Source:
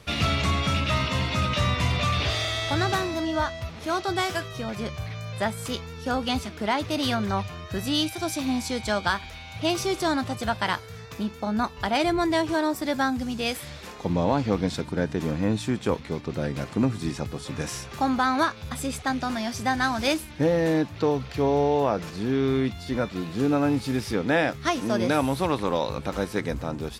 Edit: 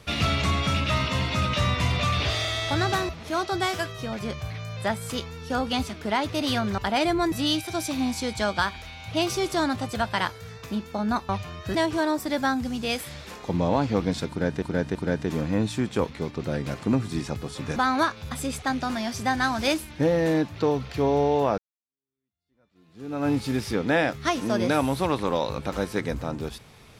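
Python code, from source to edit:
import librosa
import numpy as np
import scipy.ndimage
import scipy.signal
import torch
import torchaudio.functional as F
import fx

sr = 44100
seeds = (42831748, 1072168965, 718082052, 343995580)

y = fx.edit(x, sr, fx.cut(start_s=3.09, length_s=0.56),
    fx.swap(start_s=7.34, length_s=0.46, other_s=11.77, other_length_s=0.54),
    fx.repeat(start_s=14.85, length_s=0.33, count=3),
    fx.cut(start_s=17.66, length_s=0.5),
    fx.fade_in_span(start_s=21.98, length_s=1.71, curve='exp'), tone=tone)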